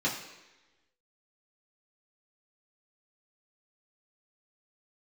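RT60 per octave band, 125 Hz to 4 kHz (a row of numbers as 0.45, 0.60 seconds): 0.85, 1.0, 1.1, 1.1, 1.2, 1.1 seconds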